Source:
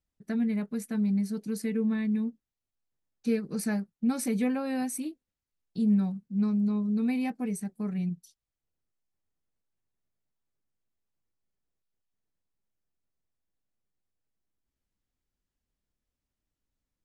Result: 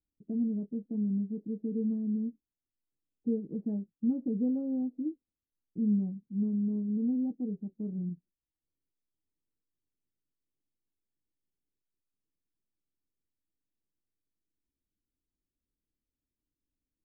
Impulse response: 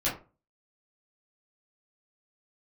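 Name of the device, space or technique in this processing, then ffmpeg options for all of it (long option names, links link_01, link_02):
under water: -af "lowpass=frequency=520:width=0.5412,lowpass=frequency=520:width=1.3066,equalizer=frequency=300:width_type=o:width=0.57:gain=8,volume=-5.5dB"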